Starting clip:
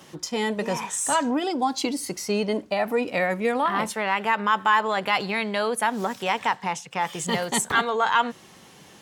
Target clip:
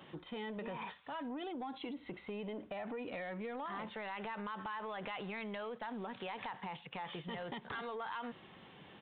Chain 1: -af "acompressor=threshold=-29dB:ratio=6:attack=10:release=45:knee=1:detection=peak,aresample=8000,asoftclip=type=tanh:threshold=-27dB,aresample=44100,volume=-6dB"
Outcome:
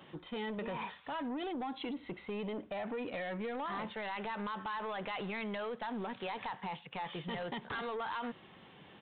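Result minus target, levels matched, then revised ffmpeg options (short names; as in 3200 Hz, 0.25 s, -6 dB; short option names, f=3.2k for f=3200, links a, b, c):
compressor: peak gain reduction -5.5 dB
-af "acompressor=threshold=-35.5dB:ratio=6:attack=10:release=45:knee=1:detection=peak,aresample=8000,asoftclip=type=tanh:threshold=-27dB,aresample=44100,volume=-6dB"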